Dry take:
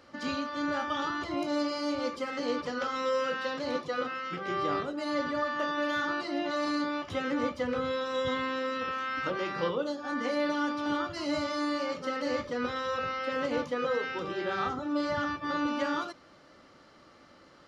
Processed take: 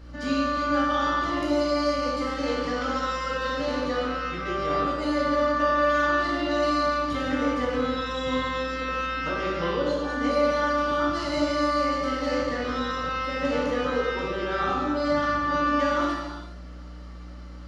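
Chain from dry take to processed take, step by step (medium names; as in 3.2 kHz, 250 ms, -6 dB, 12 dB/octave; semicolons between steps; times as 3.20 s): hum 60 Hz, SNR 15 dB; gated-style reverb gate 490 ms falling, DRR -3.5 dB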